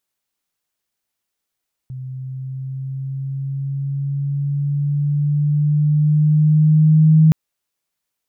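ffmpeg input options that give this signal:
-f lavfi -i "aevalsrc='pow(10,(-7+20*(t/5.42-1))/20)*sin(2*PI*129*5.42/(3.5*log(2)/12)*(exp(3.5*log(2)/12*t/5.42)-1))':d=5.42:s=44100"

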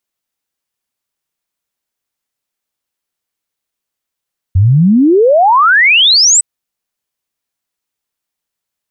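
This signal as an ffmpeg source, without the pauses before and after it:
-f lavfi -i "aevalsrc='0.596*clip(min(t,1.86-t)/0.01,0,1)*sin(2*PI*87*1.86/log(8200/87)*(exp(log(8200/87)*t/1.86)-1))':d=1.86:s=44100"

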